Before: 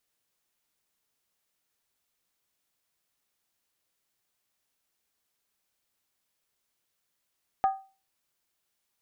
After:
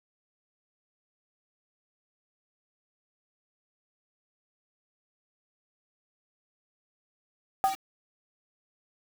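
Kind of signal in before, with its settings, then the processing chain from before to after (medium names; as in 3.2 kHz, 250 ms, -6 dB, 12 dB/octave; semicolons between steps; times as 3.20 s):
skin hit, lowest mode 774 Hz, decay 0.34 s, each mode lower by 11.5 dB, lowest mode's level -17.5 dB
word length cut 6-bit, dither none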